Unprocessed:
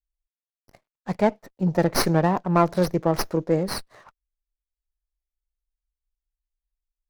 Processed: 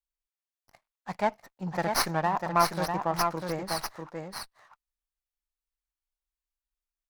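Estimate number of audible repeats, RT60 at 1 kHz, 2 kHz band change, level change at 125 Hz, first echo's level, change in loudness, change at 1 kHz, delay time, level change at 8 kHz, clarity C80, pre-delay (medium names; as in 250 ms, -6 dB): 1, no reverb, -1.0 dB, -11.0 dB, -5.0 dB, -6.0 dB, -0.5 dB, 647 ms, -2.0 dB, no reverb, no reverb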